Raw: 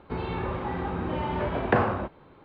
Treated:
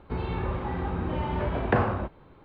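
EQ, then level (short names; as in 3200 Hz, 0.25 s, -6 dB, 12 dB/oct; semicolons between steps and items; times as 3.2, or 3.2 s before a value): low shelf 88 Hz +11 dB; -2.0 dB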